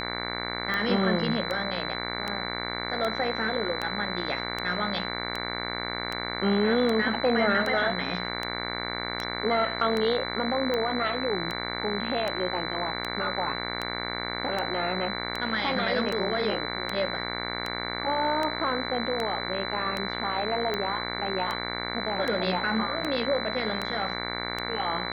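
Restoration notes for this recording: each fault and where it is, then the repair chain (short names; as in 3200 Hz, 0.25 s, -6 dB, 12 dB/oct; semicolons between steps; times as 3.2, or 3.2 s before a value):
buzz 60 Hz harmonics 38 -34 dBFS
tick 78 rpm -16 dBFS
tone 4000 Hz -35 dBFS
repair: de-click; notch 4000 Hz, Q 30; de-hum 60 Hz, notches 38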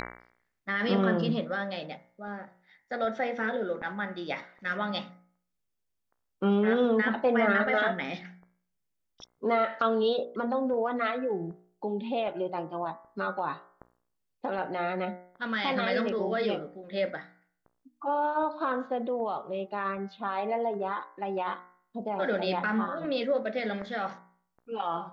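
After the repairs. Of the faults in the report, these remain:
none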